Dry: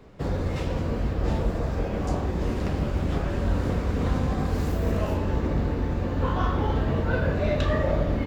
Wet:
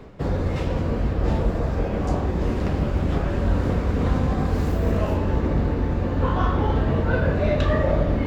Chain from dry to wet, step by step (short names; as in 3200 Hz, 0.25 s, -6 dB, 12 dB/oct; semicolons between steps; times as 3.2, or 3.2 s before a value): high shelf 3800 Hz -5.5 dB; reverse; upward compressor, threshold -27 dBFS; reverse; gain +3.5 dB